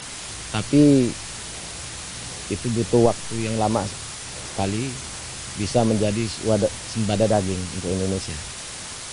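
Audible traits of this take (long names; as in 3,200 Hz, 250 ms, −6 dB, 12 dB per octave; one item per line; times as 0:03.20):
phaser sweep stages 2, 1.4 Hz, lowest notch 600–2,600 Hz
a quantiser's noise floor 6 bits, dither triangular
MP3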